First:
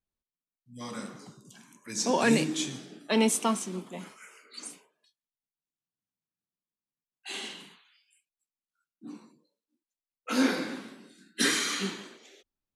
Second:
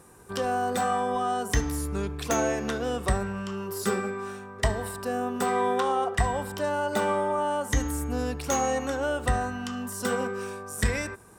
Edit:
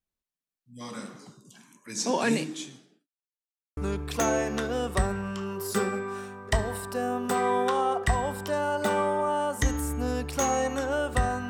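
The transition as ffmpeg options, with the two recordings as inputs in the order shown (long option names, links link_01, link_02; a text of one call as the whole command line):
ffmpeg -i cue0.wav -i cue1.wav -filter_complex "[0:a]apad=whole_dur=11.49,atrim=end=11.49,asplit=2[link_01][link_02];[link_01]atrim=end=3.07,asetpts=PTS-STARTPTS,afade=type=out:start_time=2.09:duration=0.98[link_03];[link_02]atrim=start=3.07:end=3.77,asetpts=PTS-STARTPTS,volume=0[link_04];[1:a]atrim=start=1.88:end=9.6,asetpts=PTS-STARTPTS,afade=type=in:duration=0.004:curve=hsin[link_05];[link_03][link_04][link_05]concat=n=3:v=0:a=1" out.wav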